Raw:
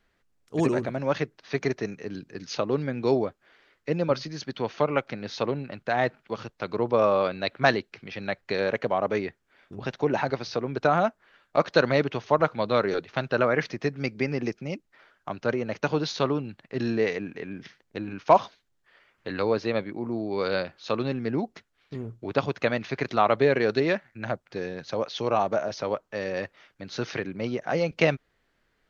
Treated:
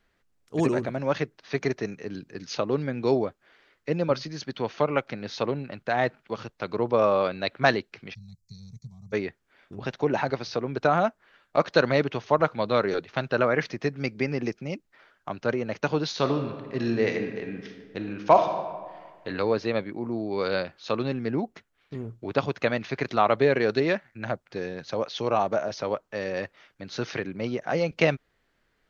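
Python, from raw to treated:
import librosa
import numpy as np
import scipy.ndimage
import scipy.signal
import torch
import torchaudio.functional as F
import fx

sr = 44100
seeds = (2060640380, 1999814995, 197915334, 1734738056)

y = fx.cheby2_bandstop(x, sr, low_hz=290.0, high_hz=3100.0, order=4, stop_db=40, at=(8.13, 9.12), fade=0.02)
y = fx.reverb_throw(y, sr, start_s=16.11, length_s=3.17, rt60_s=1.6, drr_db=6.0)
y = fx.peak_eq(y, sr, hz=4800.0, db=-4.5, octaves=0.94, at=(21.34, 21.97))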